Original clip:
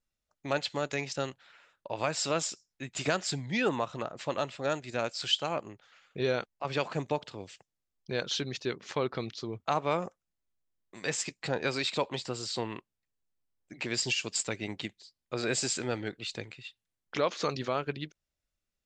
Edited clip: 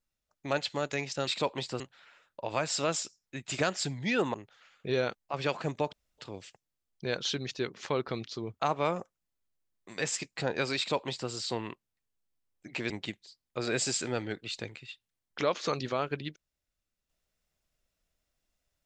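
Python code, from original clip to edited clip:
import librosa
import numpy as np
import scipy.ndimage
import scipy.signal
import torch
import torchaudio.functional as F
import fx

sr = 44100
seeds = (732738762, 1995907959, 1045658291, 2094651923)

y = fx.edit(x, sr, fx.cut(start_s=3.81, length_s=1.84),
    fx.insert_room_tone(at_s=7.24, length_s=0.25),
    fx.duplicate(start_s=11.83, length_s=0.53, to_s=1.27),
    fx.cut(start_s=13.96, length_s=0.7), tone=tone)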